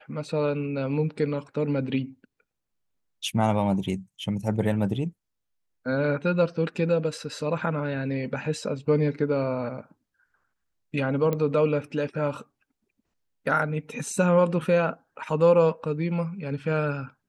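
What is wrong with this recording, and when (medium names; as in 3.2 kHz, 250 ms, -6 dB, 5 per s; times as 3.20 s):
11.33 s: pop -15 dBFS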